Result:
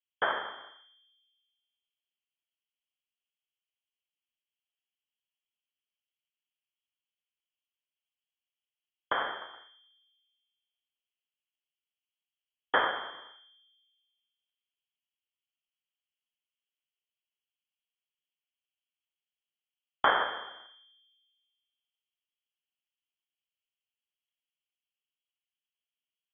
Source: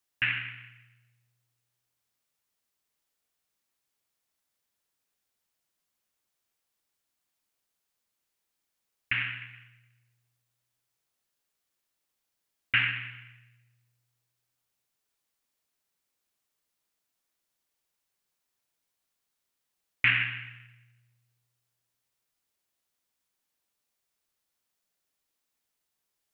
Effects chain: level-controlled noise filter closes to 590 Hz, open at -35 dBFS; frequency inversion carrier 3.3 kHz; bass shelf 250 Hz -11 dB

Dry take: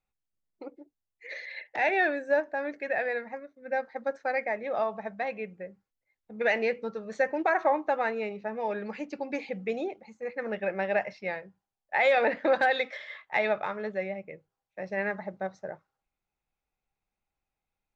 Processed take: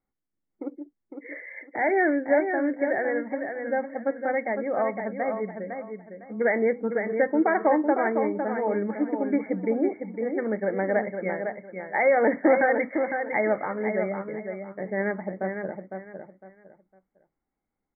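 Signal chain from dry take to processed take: brick-wall FIR low-pass 2.3 kHz; peaking EQ 280 Hz +12 dB 1.2 oct; on a send: feedback delay 506 ms, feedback 26%, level -6.5 dB

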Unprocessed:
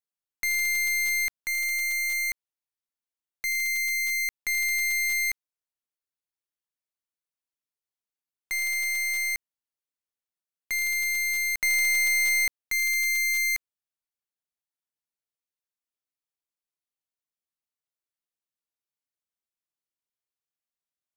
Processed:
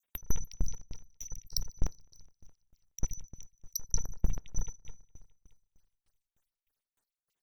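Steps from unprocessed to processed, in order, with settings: random holes in the spectrogram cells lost 62%; low-pass that closes with the level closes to 340 Hz, closed at -30.5 dBFS; in parallel at -9.5 dB: sine folder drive 3 dB, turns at -25 dBFS; on the sum: two-band feedback delay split 1.9 kHz, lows 597 ms, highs 422 ms, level -15 dB; on a send at -22.5 dB: reverberation RT60 0.75 s, pre-delay 6 ms; on the sum: wide varispeed 2.85×; sawtooth tremolo in dB decaying 3.3 Hz, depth 29 dB; trim +18 dB

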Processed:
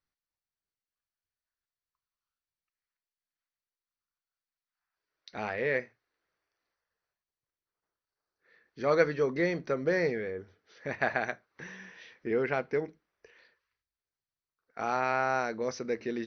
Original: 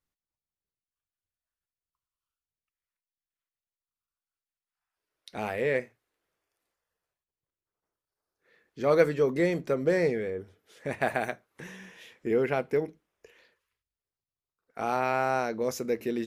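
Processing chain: rippled Chebyshev low-pass 6.1 kHz, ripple 6 dB; trim +2 dB

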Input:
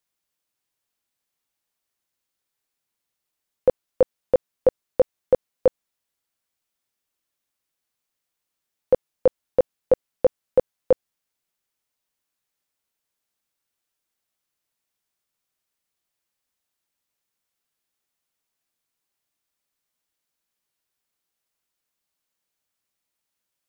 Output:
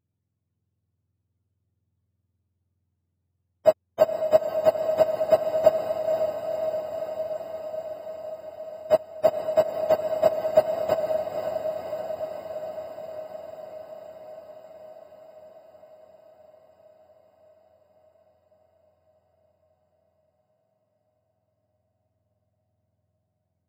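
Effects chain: spectrum inverted on a logarithmic axis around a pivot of 570 Hz; echo that smears into a reverb 515 ms, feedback 74%, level -6 dB; trim +3.5 dB

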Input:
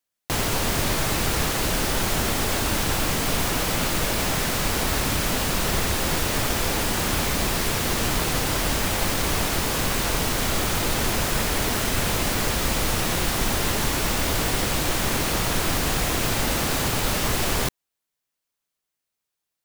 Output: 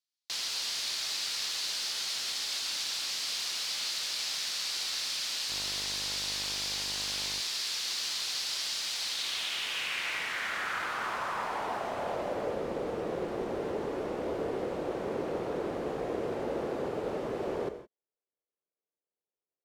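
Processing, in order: band-pass sweep 4.5 kHz -> 450 Hz, 9.00–12.68 s; gated-style reverb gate 190 ms flat, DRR 8.5 dB; 5.49–7.39 s: mains buzz 50 Hz, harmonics 22, -49 dBFS -2 dB/octave

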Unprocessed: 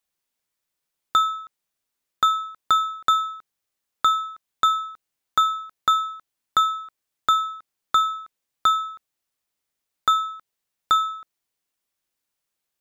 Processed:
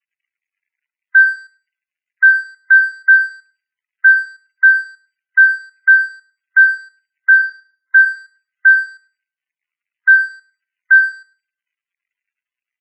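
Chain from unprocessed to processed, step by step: zero-crossing glitches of -18.5 dBFS; mistuned SSB +260 Hz 240–2300 Hz; tilt shelf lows -9.5 dB, about 920 Hz; small resonant body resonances 1/2 kHz, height 9 dB, ringing for 45 ms; crossover distortion -36 dBFS; 7.31–8.02 s: level-controlled noise filter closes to 1.4 kHz, open at -13.5 dBFS; feedback delay 106 ms, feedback 32%, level -10 dB; on a send at -18 dB: reverberation RT60 0.70 s, pre-delay 34 ms; on the sum: loudest bins only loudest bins 32; loudness maximiser +10.5 dB; spectral contrast expander 1.5:1; trim -1 dB

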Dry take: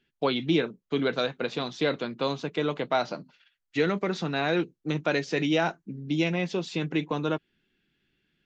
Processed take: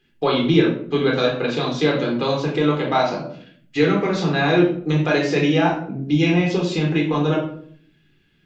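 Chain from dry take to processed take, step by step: 5.52–6.02 s: treble shelf 3.5 kHz -7.5 dB; in parallel at -1.5 dB: compression, threshold -33 dBFS, peak gain reduction 13 dB; on the sum: simulated room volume 730 m³, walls furnished, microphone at 3.9 m

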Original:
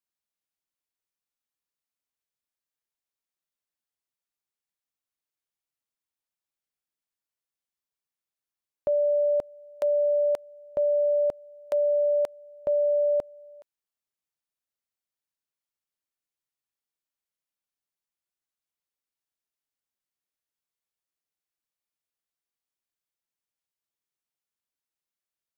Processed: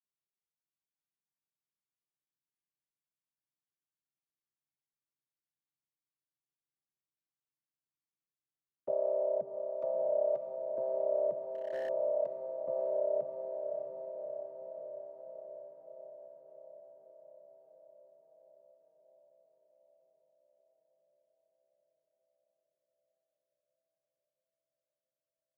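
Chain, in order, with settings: vocoder on a held chord minor triad, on C3; echo that smears into a reverb 621 ms, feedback 69%, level -6 dB; 11.45–11.89 s: overload inside the chain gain 26.5 dB; trim -6.5 dB

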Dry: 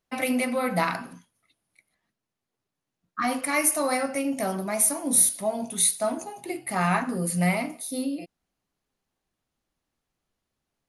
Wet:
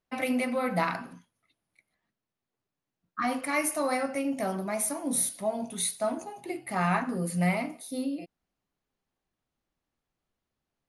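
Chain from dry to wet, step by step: treble shelf 5.4 kHz -8 dB; trim -2.5 dB

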